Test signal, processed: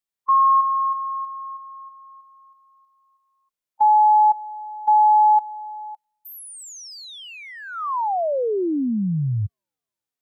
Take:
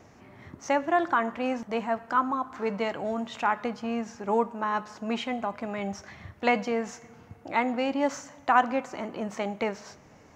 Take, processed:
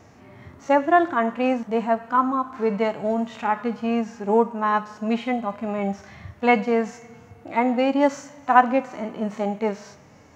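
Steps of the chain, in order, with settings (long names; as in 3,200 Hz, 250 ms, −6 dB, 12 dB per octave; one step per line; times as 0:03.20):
harmonic and percussive parts rebalanced percussive −17 dB
delay with a high-pass on its return 326 ms, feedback 47%, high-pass 3,900 Hz, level −23.5 dB
level +7.5 dB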